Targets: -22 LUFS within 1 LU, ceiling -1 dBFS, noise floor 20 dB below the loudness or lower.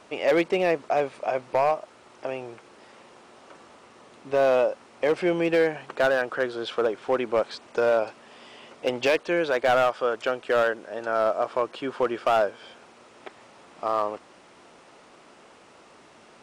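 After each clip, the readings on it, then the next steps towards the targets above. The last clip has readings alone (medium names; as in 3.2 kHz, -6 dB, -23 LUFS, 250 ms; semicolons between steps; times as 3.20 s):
clipped samples 1.1%; clipping level -15.0 dBFS; loudness -25.5 LUFS; peak level -15.0 dBFS; loudness target -22.0 LUFS
-> clip repair -15 dBFS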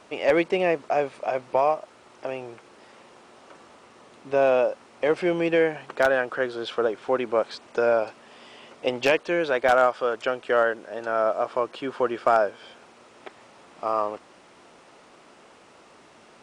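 clipped samples 0.0%; loudness -24.5 LUFS; peak level -6.0 dBFS; loudness target -22.0 LUFS
-> trim +2.5 dB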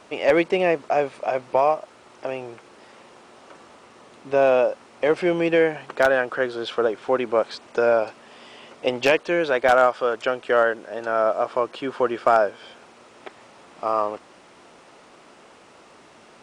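loudness -22.0 LUFS; peak level -3.5 dBFS; noise floor -50 dBFS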